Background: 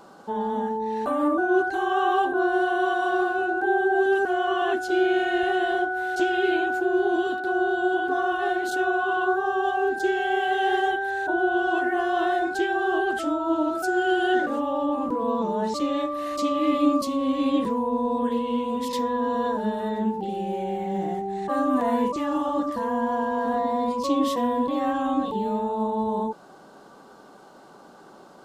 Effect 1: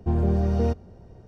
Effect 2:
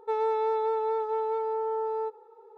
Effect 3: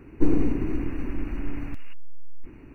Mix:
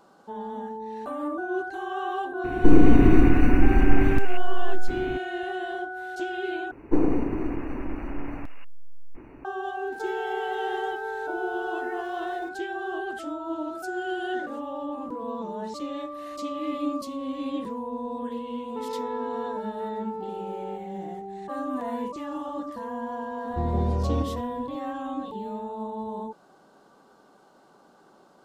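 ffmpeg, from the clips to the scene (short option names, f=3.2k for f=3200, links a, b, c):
-filter_complex "[3:a]asplit=2[a][b];[2:a]asplit=2[c][d];[0:a]volume=-8dB[e];[a]alimiter=level_in=14.5dB:limit=-1dB:release=50:level=0:latency=1[f];[b]equalizer=f=750:w=0.57:g=13[g];[c]aeval=exprs='val(0)+0.5*0.0075*sgn(val(0))':c=same[h];[1:a]asplit=2[i][j];[j]adelay=180.8,volume=-7dB,highshelf=f=4k:g=-4.07[k];[i][k]amix=inputs=2:normalize=0[l];[e]asplit=2[m][n];[m]atrim=end=6.714[o];[g]atrim=end=2.74,asetpts=PTS-STARTPTS,volume=-5dB[p];[n]atrim=start=9.446[q];[f]atrim=end=2.74,asetpts=PTS-STARTPTS,volume=-2.5dB,afade=t=in:d=0.004:c=hsin,afade=t=out:st=2.736:d=0.004:c=hsin,adelay=2440[r];[h]atrim=end=2.57,asetpts=PTS-STARTPTS,volume=-7dB,afade=t=in:d=0.004:c=hsin,afade=t=out:st=2.566:d=0.004:c=hsin,adelay=9920[s];[d]atrim=end=2.57,asetpts=PTS-STARTPTS,volume=-7.5dB,afade=t=in:d=0.004:c=hsin,afade=t=out:st=2.566:d=0.004:c=hsin,adelay=18680[t];[l]atrim=end=1.27,asetpts=PTS-STARTPTS,volume=-5.5dB,afade=t=in:d=0.004:c=hsin,afade=t=out:st=1.266:d=0.004:c=hsin,adelay=23500[u];[o][p]acrossfade=d=0.004:c1=hsin:c2=hsin[v];[v][q]acrossfade=d=0.004:c1=hsin:c2=hsin[w];[w][r][s][t][u]amix=inputs=5:normalize=0"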